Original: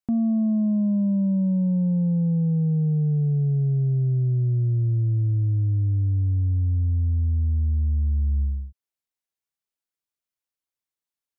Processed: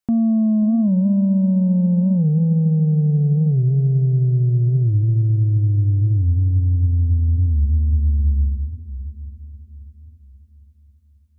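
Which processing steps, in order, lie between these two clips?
on a send: multi-head delay 269 ms, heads second and third, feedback 43%, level -16.5 dB; on the sum: warped record 45 rpm, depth 160 cents; trim +5 dB

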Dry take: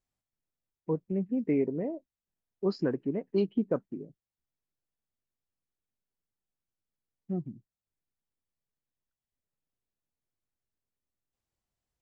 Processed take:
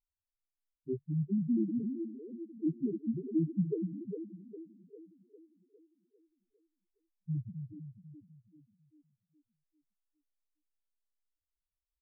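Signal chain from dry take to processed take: two-band feedback delay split 330 Hz, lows 248 ms, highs 404 ms, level -7 dB; pitch shift -3.5 st; loudest bins only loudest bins 2

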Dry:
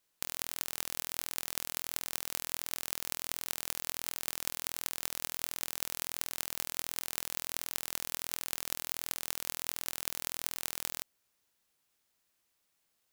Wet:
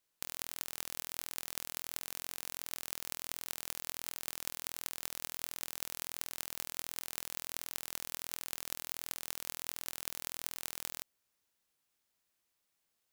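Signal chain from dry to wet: buffer glitch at 1.98 s, samples 2048, times 13; trim -4 dB

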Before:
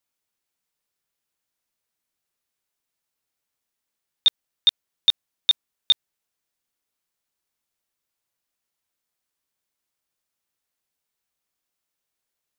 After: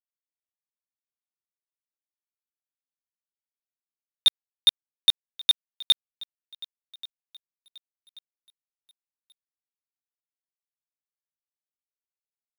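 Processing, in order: median filter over 5 samples; thinning echo 1133 ms, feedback 47%, high-pass 230 Hz, level -19.5 dB; crossover distortion -47.5 dBFS

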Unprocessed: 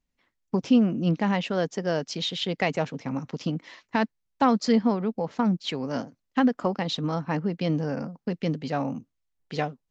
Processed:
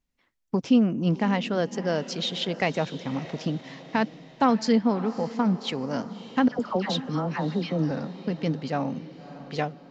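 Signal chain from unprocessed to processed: 6.48–7.91 s: phase dispersion lows, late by 111 ms, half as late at 1.3 kHz; on a send: echo that smears into a reverb 594 ms, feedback 49%, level -15 dB

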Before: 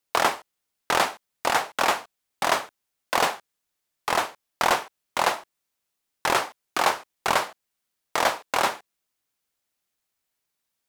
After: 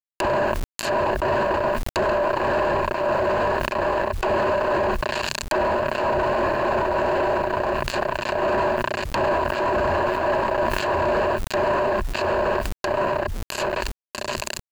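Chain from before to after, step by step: backward echo that repeats 483 ms, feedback 56%, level -5.5 dB; upward compressor, threshold -41 dBFS; on a send at -7 dB: reverberation, pre-delay 3 ms; on the sum: tape speed -26%; fuzz box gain 33 dB, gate -38 dBFS; rippled EQ curve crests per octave 1.4, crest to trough 11 dB; low-pass that closes with the level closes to 1.4 kHz, closed at -16 dBFS; peak limiter -15 dBFS, peak gain reduction 10.5 dB; bit crusher 11-bit; treble shelf 4.7 kHz +8.5 dB; decay stretcher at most 21 dB/s

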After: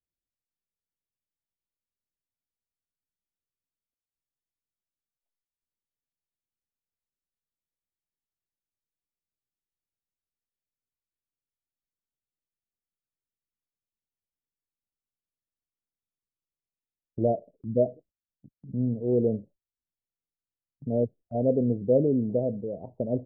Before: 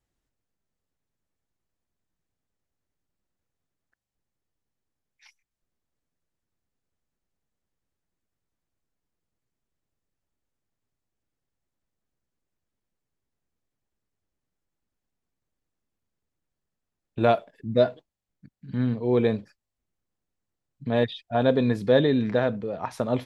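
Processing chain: steep low-pass 640 Hz 48 dB/octave; gate -51 dBFS, range -15 dB; trim -2 dB

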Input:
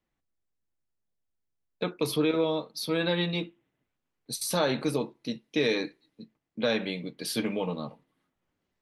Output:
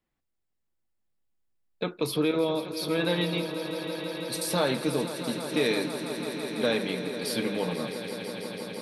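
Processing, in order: band-stop 6.1 kHz, Q 12; echo with a slow build-up 165 ms, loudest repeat 5, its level -13 dB

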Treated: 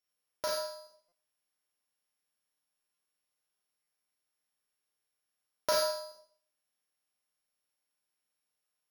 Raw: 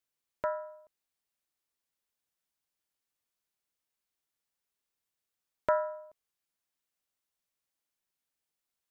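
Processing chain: sorted samples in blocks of 8 samples; bass shelf 280 Hz -6 dB; Schroeder reverb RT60 0.51 s, combs from 30 ms, DRR -2.5 dB; buffer glitch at 1.08/2.94/3.83 s, samples 256, times 6; trim -2 dB

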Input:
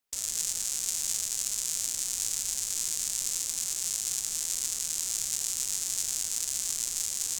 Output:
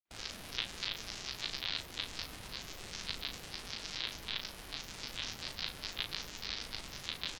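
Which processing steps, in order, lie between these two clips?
granulator, pitch spread up and down by 12 st; distance through air 310 m; doubling 37 ms -6.5 dB; trim +4.5 dB

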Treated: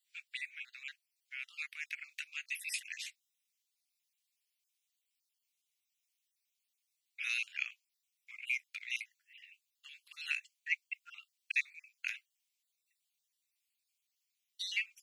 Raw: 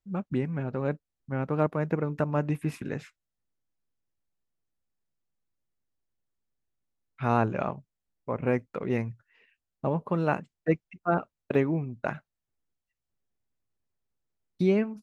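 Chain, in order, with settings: random holes in the spectrogram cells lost 29%; steep high-pass 2.2 kHz 48 dB/octave; trim +11.5 dB

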